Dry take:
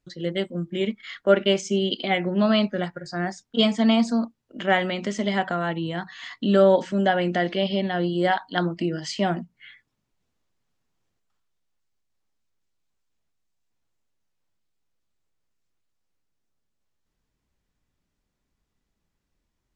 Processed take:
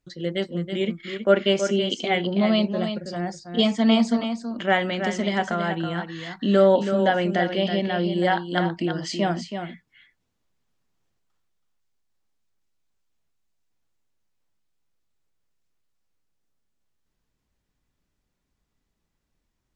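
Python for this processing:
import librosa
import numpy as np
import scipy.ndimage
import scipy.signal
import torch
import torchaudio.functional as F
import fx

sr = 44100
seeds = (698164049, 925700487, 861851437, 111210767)

y = fx.peak_eq(x, sr, hz=1500.0, db=-9.5, octaves=0.83, at=(2.21, 3.66))
y = y + 10.0 ** (-8.0 / 20.0) * np.pad(y, (int(325 * sr / 1000.0), 0))[:len(y)]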